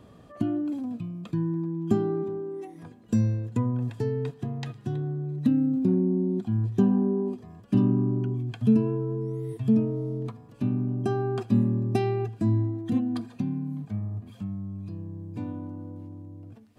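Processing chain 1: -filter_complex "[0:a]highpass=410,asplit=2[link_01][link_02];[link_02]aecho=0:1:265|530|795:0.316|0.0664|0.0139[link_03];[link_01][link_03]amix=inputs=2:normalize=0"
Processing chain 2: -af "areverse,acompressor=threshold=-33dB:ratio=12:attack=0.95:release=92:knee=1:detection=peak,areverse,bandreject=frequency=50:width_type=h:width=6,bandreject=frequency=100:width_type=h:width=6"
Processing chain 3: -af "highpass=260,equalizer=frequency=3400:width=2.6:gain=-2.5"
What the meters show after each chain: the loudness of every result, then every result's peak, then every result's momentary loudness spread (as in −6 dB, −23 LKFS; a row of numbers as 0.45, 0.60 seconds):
−35.5, −39.0, −31.5 LKFS; −16.5, −28.0, −14.5 dBFS; 17, 4, 16 LU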